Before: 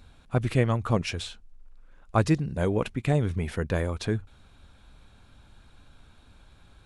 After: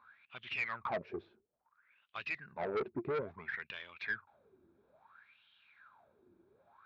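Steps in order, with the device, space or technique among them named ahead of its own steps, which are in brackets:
wah-wah guitar rig (LFO wah 0.59 Hz 340–3,100 Hz, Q 12; tube saturation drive 42 dB, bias 0.25; loudspeaker in its box 86–4,000 Hz, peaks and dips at 300 Hz −7 dB, 500 Hz −7 dB, 750 Hz −5 dB, 3,000 Hz −8 dB)
level +14.5 dB

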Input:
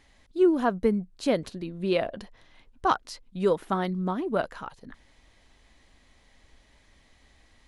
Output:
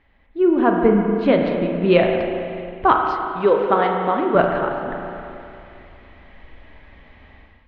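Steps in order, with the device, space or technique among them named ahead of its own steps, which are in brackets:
0:02.95–0:04.35: bass and treble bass −12 dB, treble +7 dB
spring reverb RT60 2.6 s, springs 34/45 ms, chirp 60 ms, DRR 2 dB
0:01.25–0:02.16: dynamic equaliser 4,200 Hz, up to +5 dB, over −47 dBFS, Q 1.1
action camera in a waterproof case (low-pass filter 2,800 Hz 24 dB per octave; automatic gain control gain up to 12.5 dB; AAC 64 kbit/s 32,000 Hz)

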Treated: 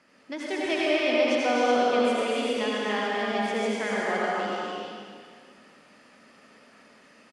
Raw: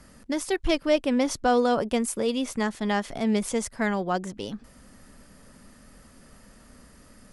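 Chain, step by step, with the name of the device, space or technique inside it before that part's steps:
station announcement (band-pass filter 300–4,700 Hz; parametric band 2,500 Hz +7 dB 0.52 octaves; loudspeakers that aren't time-aligned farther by 84 metres −4 dB, 98 metres −5 dB; convolution reverb RT60 1.9 s, pre-delay 70 ms, DRR −4.5 dB)
level −6 dB

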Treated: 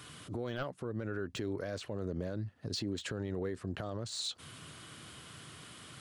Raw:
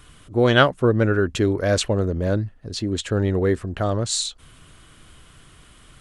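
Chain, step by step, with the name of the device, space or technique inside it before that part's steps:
broadcast voice chain (high-pass filter 98 Hz 24 dB per octave; de-essing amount 70%; downward compressor 5 to 1, threshold −32 dBFS, peak gain reduction 18 dB; parametric band 4,600 Hz +4 dB 0.65 octaves; brickwall limiter −28 dBFS, peak gain reduction 9 dB)

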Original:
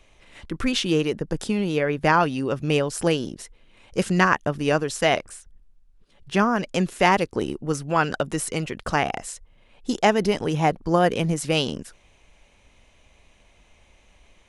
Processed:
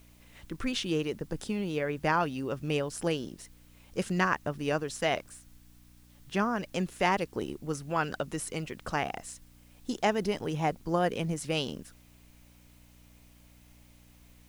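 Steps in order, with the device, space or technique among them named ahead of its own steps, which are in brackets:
video cassette with head-switching buzz (hum with harmonics 60 Hz, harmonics 5, −50 dBFS −4 dB per octave; white noise bed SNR 32 dB)
level −8.5 dB

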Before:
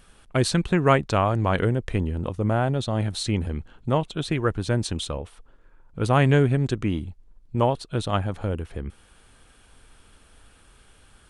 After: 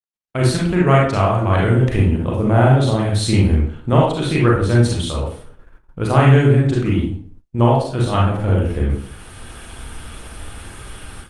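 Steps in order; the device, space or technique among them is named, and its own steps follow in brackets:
0:01.02–0:02.04: high-shelf EQ 4,600 Hz +2.5 dB
speakerphone in a meeting room (convolution reverb RT60 0.50 s, pre-delay 33 ms, DRR −4 dB; automatic gain control gain up to 16 dB; noise gate −39 dBFS, range −54 dB; level −1 dB; Opus 32 kbit/s 48,000 Hz)

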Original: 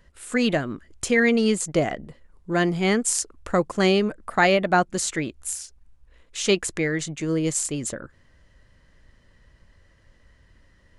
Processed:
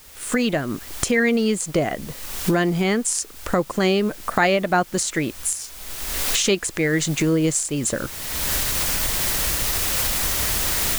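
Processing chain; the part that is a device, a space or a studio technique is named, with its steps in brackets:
cheap recorder with automatic gain (white noise bed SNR 23 dB; camcorder AGC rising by 32 dB per second)

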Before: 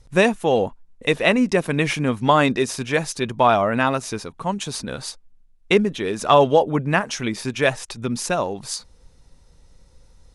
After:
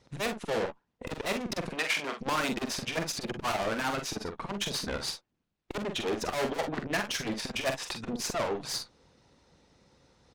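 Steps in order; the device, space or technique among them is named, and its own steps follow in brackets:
valve radio (band-pass filter 150–4,900 Hz; tube saturation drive 30 dB, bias 0.7; saturating transformer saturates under 250 Hz)
0:01.71–0:02.21: meter weighting curve A
harmonic and percussive parts rebalanced harmonic −9 dB
ambience of single reflections 45 ms −7 dB, 59 ms −15.5 dB
level +6.5 dB

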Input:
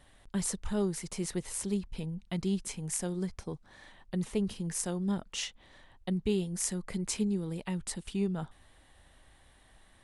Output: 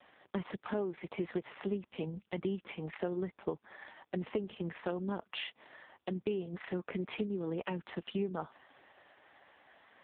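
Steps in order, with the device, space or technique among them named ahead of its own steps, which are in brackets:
voicemail (band-pass filter 340–2,800 Hz; downward compressor 8 to 1, threshold −40 dBFS, peak gain reduction 11 dB; level +9.5 dB; AMR narrowband 4.75 kbit/s 8,000 Hz)

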